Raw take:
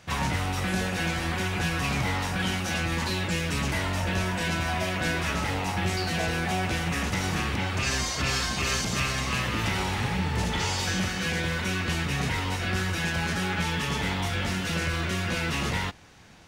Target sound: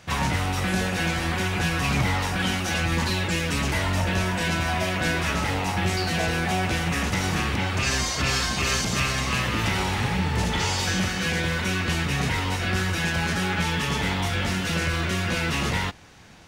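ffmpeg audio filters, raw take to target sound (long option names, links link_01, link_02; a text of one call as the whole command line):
ffmpeg -i in.wav -filter_complex "[0:a]asplit=3[link_01][link_02][link_03];[link_01]afade=type=out:start_time=1.84:duration=0.02[link_04];[link_02]aphaser=in_gain=1:out_gain=1:delay=4.2:decay=0.23:speed=1:type=triangular,afade=type=in:start_time=1.84:duration=0.02,afade=type=out:start_time=4.03:duration=0.02[link_05];[link_03]afade=type=in:start_time=4.03:duration=0.02[link_06];[link_04][link_05][link_06]amix=inputs=3:normalize=0,volume=3dB" out.wav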